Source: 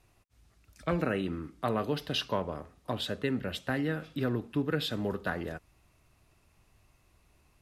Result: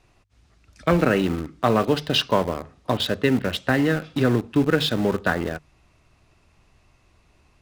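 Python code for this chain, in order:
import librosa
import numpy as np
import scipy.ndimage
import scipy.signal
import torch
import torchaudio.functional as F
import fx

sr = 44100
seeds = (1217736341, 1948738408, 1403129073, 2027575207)

p1 = scipy.signal.sosfilt(scipy.signal.butter(2, 6800.0, 'lowpass', fs=sr, output='sos'), x)
p2 = fx.hum_notches(p1, sr, base_hz=50, count=3)
p3 = np.where(np.abs(p2) >= 10.0 ** (-34.0 / 20.0), p2, 0.0)
p4 = p2 + (p3 * 10.0 ** (-4.0 / 20.0))
y = p4 * 10.0 ** (7.0 / 20.0)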